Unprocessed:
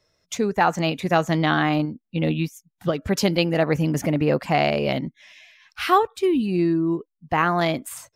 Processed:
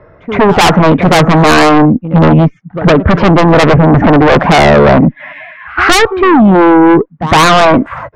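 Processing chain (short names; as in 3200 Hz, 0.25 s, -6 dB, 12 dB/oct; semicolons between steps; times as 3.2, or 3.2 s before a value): LPF 1600 Hz 24 dB/oct; tube stage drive 18 dB, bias 0.2; pre-echo 0.111 s -24 dB; sine folder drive 8 dB, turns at -16 dBFS; maximiser +20 dB; gain -1 dB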